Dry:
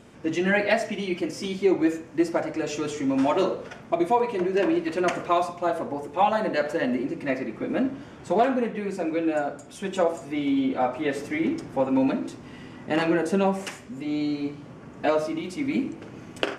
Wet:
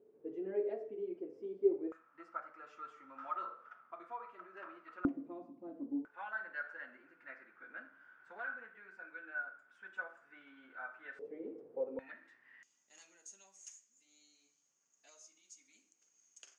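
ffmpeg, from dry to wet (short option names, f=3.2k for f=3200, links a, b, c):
-af "asetnsamples=n=441:p=0,asendcmd='1.92 bandpass f 1300;5.05 bandpass f 280;6.05 bandpass f 1500;11.19 bandpass f 470;11.99 bandpass f 1800;12.63 bandpass f 6600',bandpass=f=420:t=q:w=17:csg=0"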